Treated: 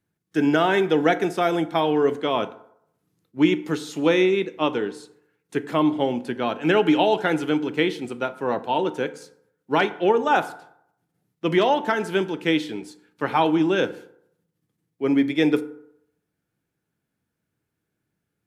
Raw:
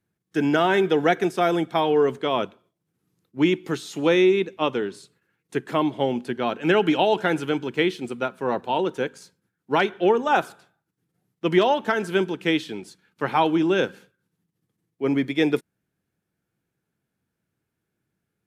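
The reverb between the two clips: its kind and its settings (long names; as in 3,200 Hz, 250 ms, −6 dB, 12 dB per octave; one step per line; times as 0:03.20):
feedback delay network reverb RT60 0.73 s, low-frequency decay 0.85×, high-frequency decay 0.5×, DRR 11.5 dB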